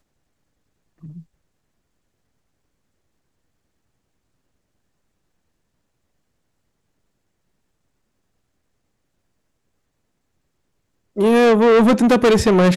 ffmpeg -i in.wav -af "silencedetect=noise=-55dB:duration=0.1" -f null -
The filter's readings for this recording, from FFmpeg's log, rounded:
silence_start: 0.00
silence_end: 0.98 | silence_duration: 0.98
silence_start: 1.34
silence_end: 11.16 | silence_duration: 9.82